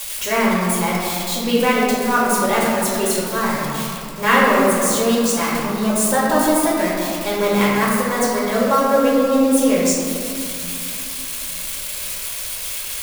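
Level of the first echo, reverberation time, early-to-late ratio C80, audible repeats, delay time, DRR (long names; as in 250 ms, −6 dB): no echo audible, 2.5 s, 0.0 dB, no echo audible, no echo audible, −6.5 dB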